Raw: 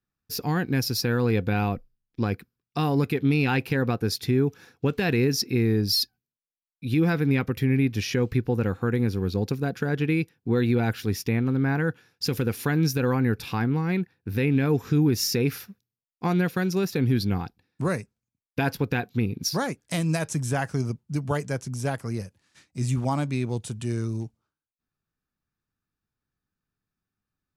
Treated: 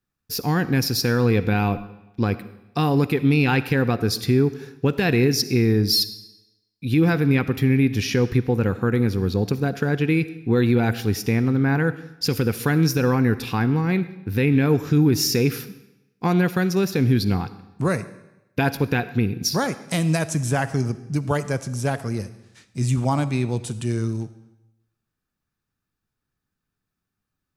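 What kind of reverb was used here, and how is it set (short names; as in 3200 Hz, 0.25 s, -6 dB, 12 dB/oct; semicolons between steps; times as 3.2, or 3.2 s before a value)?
digital reverb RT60 0.93 s, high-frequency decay 0.95×, pre-delay 20 ms, DRR 14 dB; gain +4 dB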